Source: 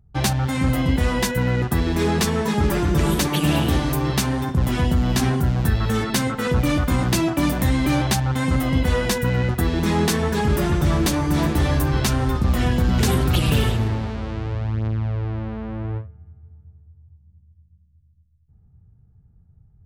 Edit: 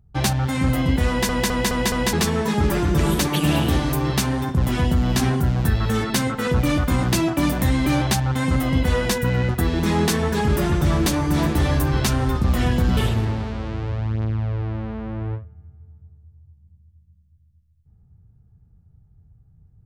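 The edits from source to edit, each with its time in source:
0:01.08: stutter in place 0.21 s, 5 plays
0:12.97–0:13.60: remove

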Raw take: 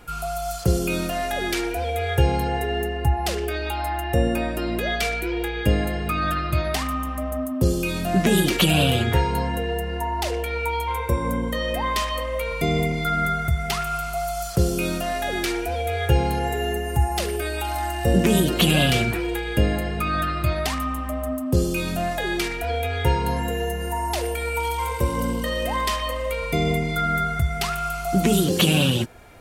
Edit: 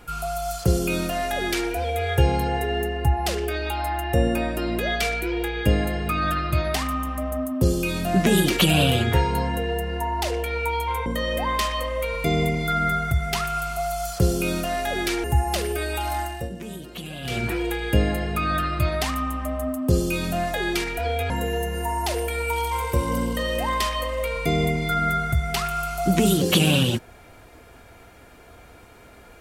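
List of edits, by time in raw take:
0:11.06–0:11.43: remove
0:15.61–0:16.88: remove
0:17.81–0:19.18: duck −17.5 dB, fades 0.33 s
0:22.94–0:23.37: remove

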